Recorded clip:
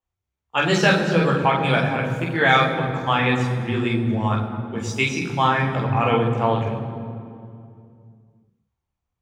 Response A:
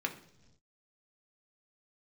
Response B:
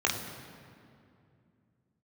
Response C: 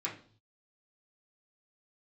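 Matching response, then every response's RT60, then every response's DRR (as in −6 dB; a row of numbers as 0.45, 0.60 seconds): B; non-exponential decay, 2.5 s, 0.45 s; 2.5, −2.5, −6.5 decibels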